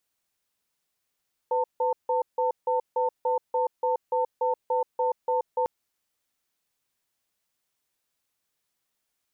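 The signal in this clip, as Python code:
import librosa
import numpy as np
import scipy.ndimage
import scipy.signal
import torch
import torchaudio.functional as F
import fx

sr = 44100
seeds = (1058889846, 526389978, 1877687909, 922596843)

y = fx.cadence(sr, length_s=4.15, low_hz=503.0, high_hz=898.0, on_s=0.13, off_s=0.16, level_db=-24.5)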